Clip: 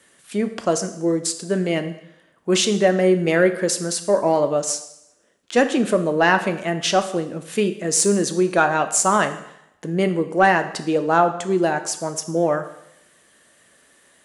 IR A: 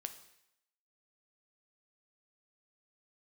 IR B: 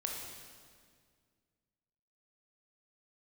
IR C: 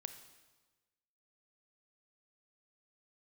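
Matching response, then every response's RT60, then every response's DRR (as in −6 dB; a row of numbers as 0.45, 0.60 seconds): A; 0.80, 2.0, 1.3 seconds; 8.0, −1.0, 8.5 decibels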